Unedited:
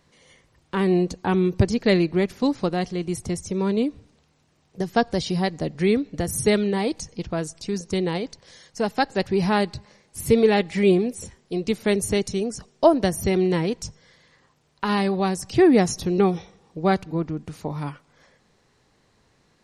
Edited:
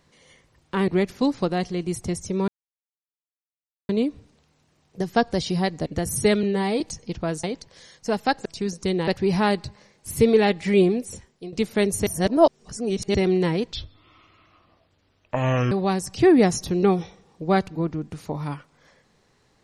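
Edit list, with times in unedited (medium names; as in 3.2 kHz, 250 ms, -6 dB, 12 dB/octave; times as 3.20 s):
0.88–2.09 s: delete
3.69 s: insert silence 1.41 s
5.66–6.08 s: delete
6.65–6.90 s: stretch 1.5×
7.53–8.15 s: move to 9.17 s
11.03–11.62 s: fade out equal-power, to -13.5 dB
12.16–13.24 s: reverse
13.81–15.07 s: speed 63%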